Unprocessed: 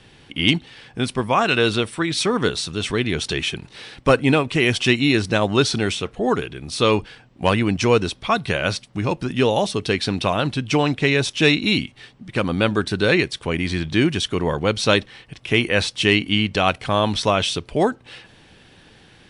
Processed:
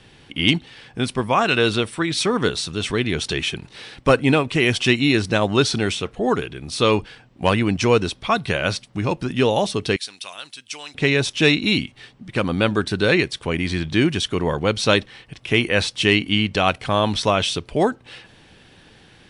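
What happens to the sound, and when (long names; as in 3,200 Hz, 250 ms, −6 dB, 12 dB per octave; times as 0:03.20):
0:09.96–0:10.95: first difference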